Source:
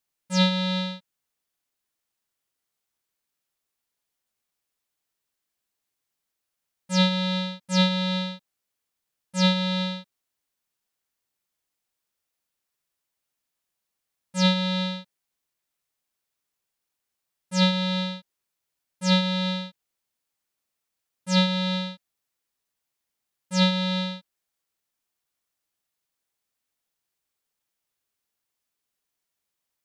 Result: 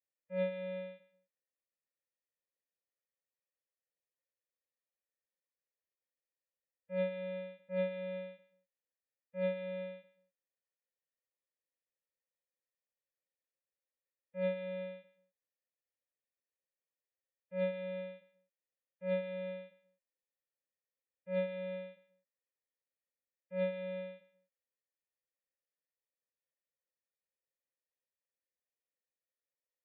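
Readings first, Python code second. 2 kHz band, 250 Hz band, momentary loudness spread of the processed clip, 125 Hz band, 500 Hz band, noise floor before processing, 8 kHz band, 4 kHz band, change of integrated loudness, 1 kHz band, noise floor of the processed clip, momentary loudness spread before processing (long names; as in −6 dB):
−16.5 dB, −20.5 dB, 13 LU, can't be measured, −4.0 dB, −83 dBFS, below −35 dB, −32.5 dB, −15.0 dB, −23.5 dB, below −85 dBFS, 14 LU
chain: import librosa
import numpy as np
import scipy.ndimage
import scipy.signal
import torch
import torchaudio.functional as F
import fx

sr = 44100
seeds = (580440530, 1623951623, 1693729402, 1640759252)

y = fx.spec_gate(x, sr, threshold_db=-25, keep='strong')
y = fx.formant_cascade(y, sr, vowel='e')
y = fx.echo_feedback(y, sr, ms=138, feedback_pct=25, wet_db=-17.0)
y = F.gain(torch.from_numpy(y), -1.0).numpy()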